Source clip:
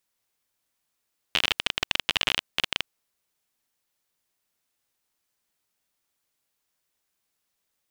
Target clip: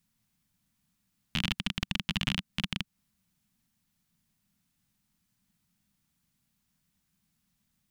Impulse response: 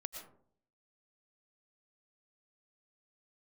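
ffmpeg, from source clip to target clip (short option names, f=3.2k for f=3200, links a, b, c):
-af "lowshelf=f=290:t=q:w=3:g=14,alimiter=limit=-12.5dB:level=0:latency=1:release=196"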